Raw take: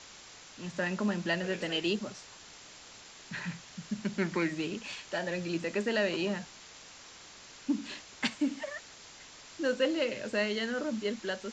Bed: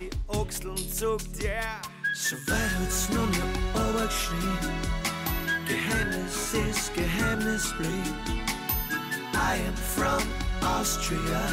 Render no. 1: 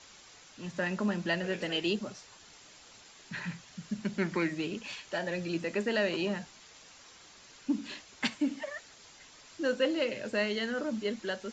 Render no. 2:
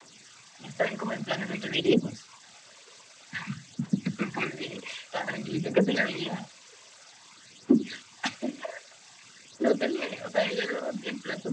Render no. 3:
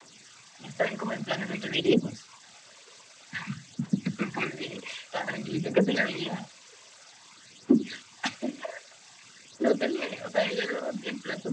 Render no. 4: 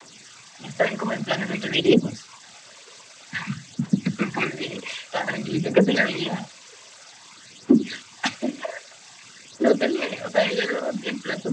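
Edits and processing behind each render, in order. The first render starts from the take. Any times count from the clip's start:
broadband denoise 6 dB, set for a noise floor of −52 dBFS
phase shifter 0.52 Hz, delay 2.1 ms, feedback 72%; cochlear-implant simulation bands 16
no processing that can be heard
level +6 dB; brickwall limiter −3 dBFS, peak gain reduction 1.5 dB

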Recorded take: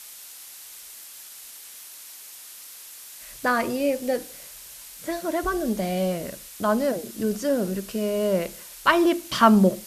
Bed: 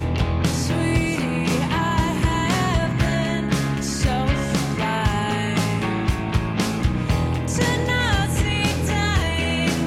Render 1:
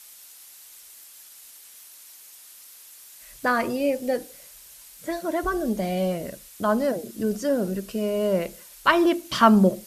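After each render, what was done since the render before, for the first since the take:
broadband denoise 6 dB, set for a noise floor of −43 dBFS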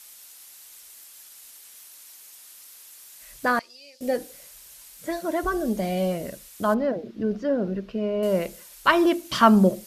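0:03.59–0:04.01: resonant band-pass 4,700 Hz, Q 3.7
0:06.74–0:08.23: high-frequency loss of the air 270 metres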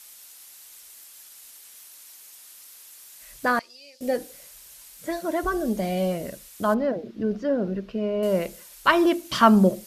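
no processing that can be heard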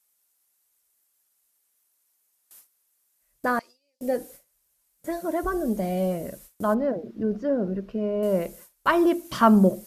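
parametric band 3,600 Hz −8.5 dB 2.2 octaves
noise gate with hold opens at −36 dBFS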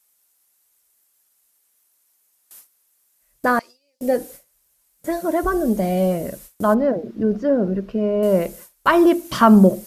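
level +6.5 dB
brickwall limiter −3 dBFS, peak gain reduction 3 dB

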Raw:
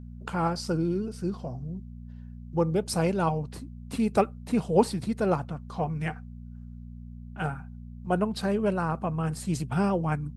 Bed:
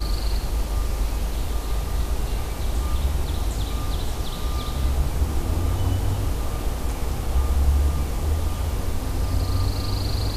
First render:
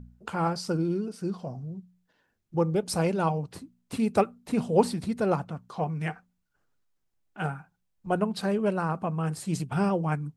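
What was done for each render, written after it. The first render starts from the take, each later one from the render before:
hum removal 60 Hz, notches 4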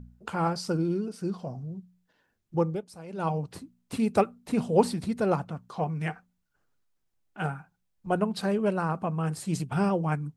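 0:02.60–0:03.35: duck −18.5 dB, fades 0.28 s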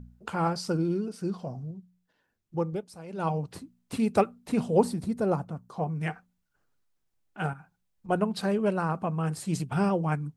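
0:01.71–0:02.73: clip gain −3.5 dB
0:04.78–0:06.03: parametric band 2,700 Hz −8.5 dB 2.2 octaves
0:07.53–0:08.09: downward compressor, threshold −43 dBFS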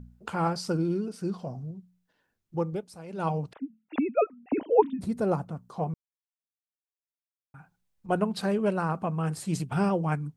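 0:03.53–0:05.01: three sine waves on the formant tracks
0:05.94–0:07.54: silence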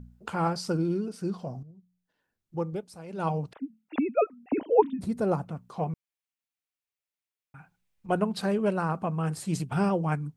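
0:01.63–0:02.94: fade in, from −13.5 dB
0:05.43–0:08.12: parametric band 2,400 Hz +6.5 dB 0.82 octaves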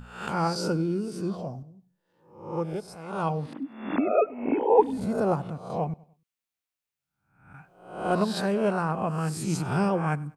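peak hold with a rise ahead of every peak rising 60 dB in 0.61 s
repeating echo 98 ms, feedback 39%, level −23 dB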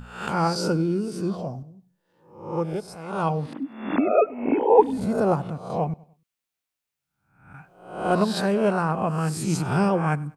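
level +3.5 dB

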